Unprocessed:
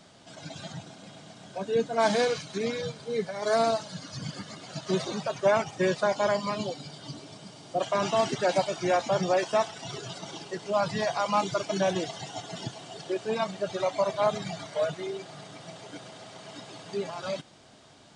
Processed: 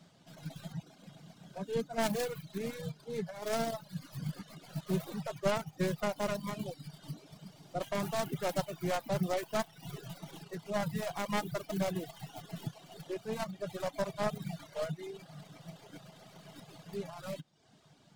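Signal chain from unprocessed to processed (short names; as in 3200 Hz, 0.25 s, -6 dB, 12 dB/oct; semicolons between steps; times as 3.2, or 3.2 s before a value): tracing distortion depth 0.46 ms; bell 160 Hz +12 dB 0.59 oct; reverb removal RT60 0.66 s; gain -9 dB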